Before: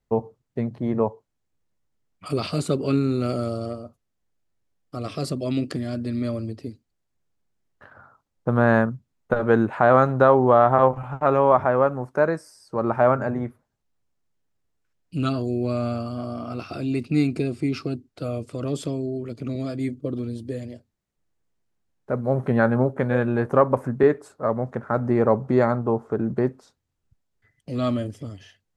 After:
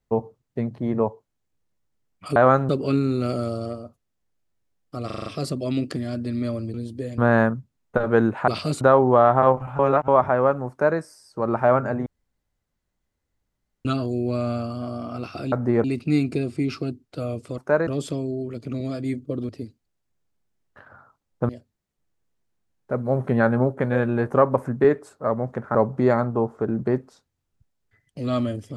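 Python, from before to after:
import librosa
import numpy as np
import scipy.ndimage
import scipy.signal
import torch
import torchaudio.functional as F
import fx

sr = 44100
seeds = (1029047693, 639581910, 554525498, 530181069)

y = fx.edit(x, sr, fx.swap(start_s=2.36, length_s=0.33, other_s=9.84, other_length_s=0.33),
    fx.stutter(start_s=5.06, slice_s=0.04, count=6),
    fx.swap(start_s=6.54, length_s=2.0, other_s=20.24, other_length_s=0.44),
    fx.reverse_span(start_s=11.15, length_s=0.29),
    fx.duplicate(start_s=12.06, length_s=0.29, to_s=18.62),
    fx.room_tone_fill(start_s=13.42, length_s=1.79),
    fx.move(start_s=24.94, length_s=0.32, to_s=16.88), tone=tone)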